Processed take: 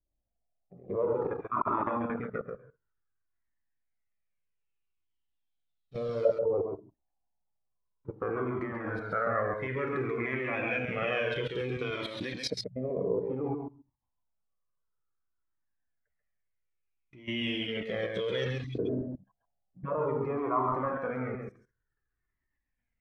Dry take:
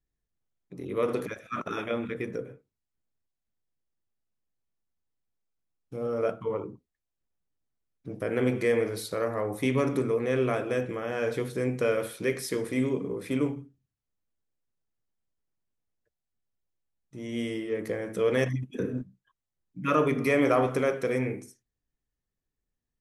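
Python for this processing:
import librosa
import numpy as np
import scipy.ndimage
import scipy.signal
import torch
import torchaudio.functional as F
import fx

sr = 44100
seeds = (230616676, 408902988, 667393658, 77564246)

y = fx.spec_erase(x, sr, start_s=12.53, length_s=0.23, low_hz=210.0, high_hz=6300.0)
y = fx.level_steps(y, sr, step_db=18)
y = fx.quant_float(y, sr, bits=4)
y = fx.filter_lfo_lowpass(y, sr, shape='saw_up', hz=0.16, low_hz=590.0, high_hz=4300.0, q=5.3)
y = y + 10.0 ** (-5.0 / 20.0) * np.pad(y, (int(136 * sr / 1000.0), 0))[:len(y)]
y = fx.comb_cascade(y, sr, direction='falling', hz=0.58)
y = y * 10.0 ** (7.0 / 20.0)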